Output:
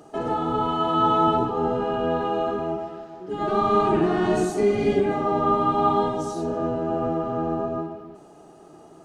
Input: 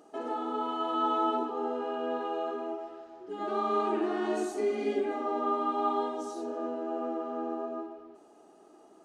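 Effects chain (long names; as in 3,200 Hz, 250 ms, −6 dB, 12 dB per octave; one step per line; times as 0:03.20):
sub-octave generator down 1 octave, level −3 dB
level +8.5 dB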